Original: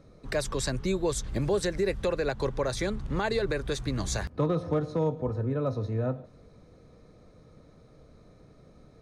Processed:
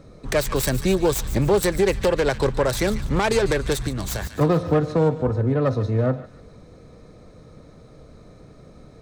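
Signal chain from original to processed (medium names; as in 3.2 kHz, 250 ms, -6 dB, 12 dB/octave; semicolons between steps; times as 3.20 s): self-modulated delay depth 0.13 ms; peaking EQ 7.9 kHz +5.5 dB 0.21 oct; feedback echo behind a high-pass 146 ms, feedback 39%, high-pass 1.5 kHz, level -12 dB; 3.87–4.41 s: compression 5:1, threshold -32 dBFS, peak gain reduction 7 dB; trim +8.5 dB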